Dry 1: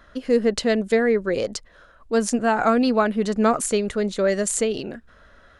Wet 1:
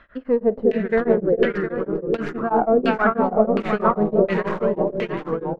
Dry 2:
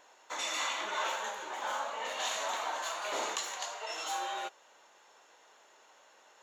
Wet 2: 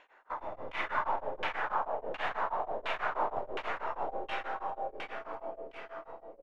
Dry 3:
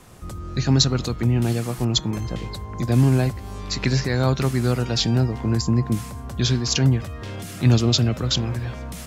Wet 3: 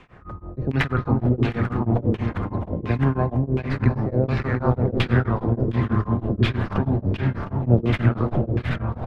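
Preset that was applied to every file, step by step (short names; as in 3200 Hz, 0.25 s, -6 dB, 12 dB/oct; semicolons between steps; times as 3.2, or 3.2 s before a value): tracing distortion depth 0.33 ms; echoes that change speed 0.289 s, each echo -3 st, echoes 2, each echo -6 dB; on a send: tapped delay 49/96/400/710 ms -16.5/-18/-4/-8 dB; on the sum: LFO low-pass saw down 1.4 Hz 420–2700 Hz; beating tremolo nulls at 6.2 Hz; gain -1 dB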